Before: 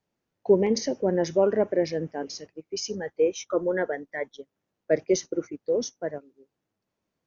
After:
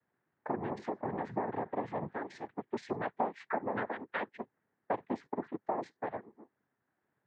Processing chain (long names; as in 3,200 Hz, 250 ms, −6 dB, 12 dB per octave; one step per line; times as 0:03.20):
downward compressor 8 to 1, threshold −33 dBFS, peak gain reduction 19 dB
cochlear-implant simulation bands 6
low-pass with resonance 1,700 Hz, resonance Q 2.4